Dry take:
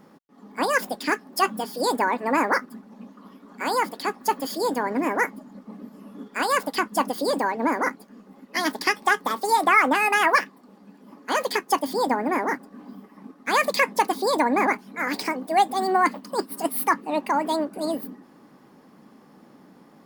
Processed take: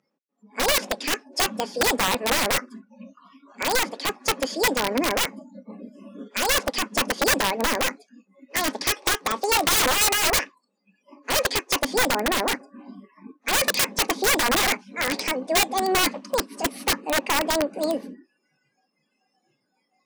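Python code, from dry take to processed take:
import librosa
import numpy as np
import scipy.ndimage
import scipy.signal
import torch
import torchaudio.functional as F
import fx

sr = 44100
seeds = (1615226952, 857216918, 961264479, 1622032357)

y = fx.noise_reduce_blind(x, sr, reduce_db=27)
y = fx.cabinet(y, sr, low_hz=170.0, low_slope=24, high_hz=8400.0, hz=(540.0, 2500.0, 6000.0), db=(8, 7, 6))
y = (np.mod(10.0 ** (14.5 / 20.0) * y + 1.0, 2.0) - 1.0) / 10.0 ** (14.5 / 20.0)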